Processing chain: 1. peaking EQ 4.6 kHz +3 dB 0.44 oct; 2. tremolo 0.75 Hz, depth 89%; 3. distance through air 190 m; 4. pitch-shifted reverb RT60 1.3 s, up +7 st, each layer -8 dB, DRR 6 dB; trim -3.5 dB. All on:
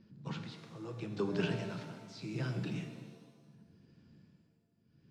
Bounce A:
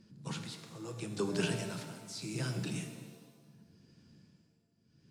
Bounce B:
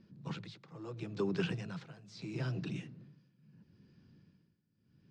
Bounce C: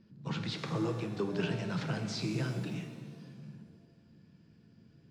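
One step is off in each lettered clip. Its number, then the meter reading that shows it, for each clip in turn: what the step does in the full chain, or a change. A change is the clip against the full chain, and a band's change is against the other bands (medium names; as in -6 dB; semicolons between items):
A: 3, 8 kHz band +14.0 dB; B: 4, momentary loudness spread change +2 LU; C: 2, momentary loudness spread change +2 LU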